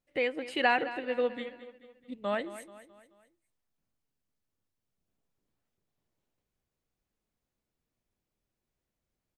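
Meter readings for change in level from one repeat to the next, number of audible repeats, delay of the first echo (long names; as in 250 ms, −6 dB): −6.5 dB, 4, 216 ms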